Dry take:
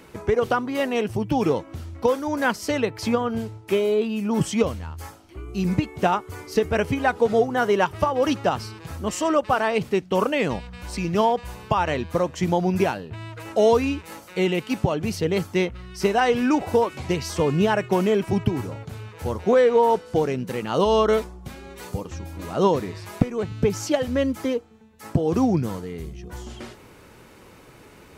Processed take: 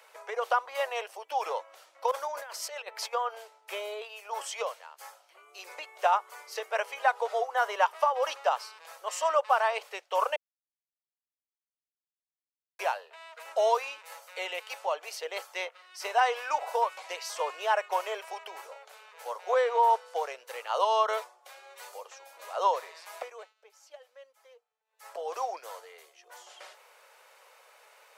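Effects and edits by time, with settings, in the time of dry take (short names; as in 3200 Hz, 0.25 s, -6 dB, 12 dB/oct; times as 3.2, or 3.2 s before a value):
2.11–3.13 negative-ratio compressor -27 dBFS, ratio -0.5
10.36–12.79 mute
23.25–25.13 dip -20.5 dB, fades 0.29 s
whole clip: steep high-pass 520 Hz 48 dB/oct; dynamic EQ 1000 Hz, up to +5 dB, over -36 dBFS, Q 1.8; gain -5.5 dB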